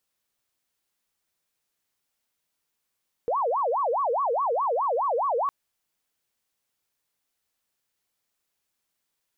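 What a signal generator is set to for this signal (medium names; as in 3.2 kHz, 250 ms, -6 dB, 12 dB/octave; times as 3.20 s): siren wail 458–1140 Hz 4.8 per s sine -22 dBFS 2.21 s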